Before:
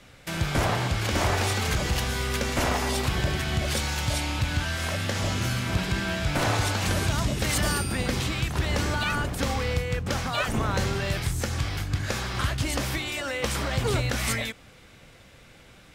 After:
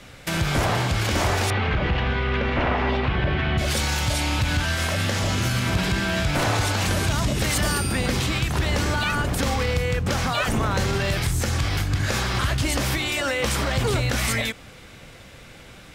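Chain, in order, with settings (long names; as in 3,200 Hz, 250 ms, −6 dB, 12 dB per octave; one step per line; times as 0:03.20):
0:01.50–0:03.58: low-pass filter 3,000 Hz 24 dB per octave
brickwall limiter −21.5 dBFS, peak gain reduction 5 dB
level +7 dB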